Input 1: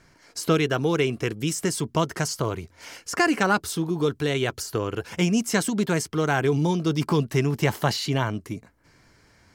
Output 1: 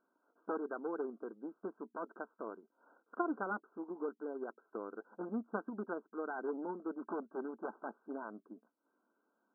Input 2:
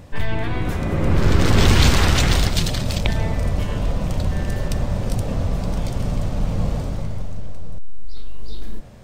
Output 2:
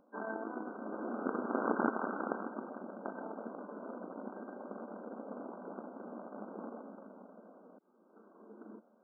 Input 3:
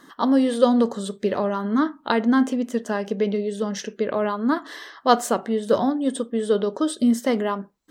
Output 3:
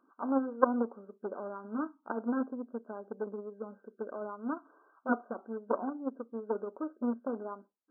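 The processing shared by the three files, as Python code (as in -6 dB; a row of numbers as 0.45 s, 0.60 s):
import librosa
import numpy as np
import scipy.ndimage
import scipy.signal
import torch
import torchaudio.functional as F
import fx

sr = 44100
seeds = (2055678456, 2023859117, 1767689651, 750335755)

y = np.minimum(x, 2.0 * 10.0 ** (-15.5 / 20.0) - x)
y = fx.cheby_harmonics(y, sr, harmonics=(3, 7), levels_db=(-11, -44), full_scale_db=-3.5)
y = fx.brickwall_bandpass(y, sr, low_hz=200.0, high_hz=1600.0)
y = F.gain(torch.from_numpy(y), 1.0).numpy()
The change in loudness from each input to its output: -18.0 LU, -19.5 LU, -13.5 LU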